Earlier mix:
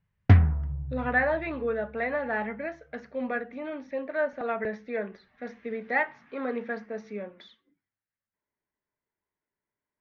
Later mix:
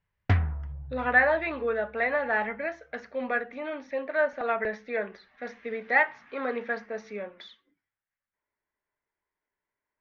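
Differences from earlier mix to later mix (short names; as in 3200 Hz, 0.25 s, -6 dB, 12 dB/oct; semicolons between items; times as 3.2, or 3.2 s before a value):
speech +5.0 dB; master: add bell 170 Hz -9.5 dB 2.7 oct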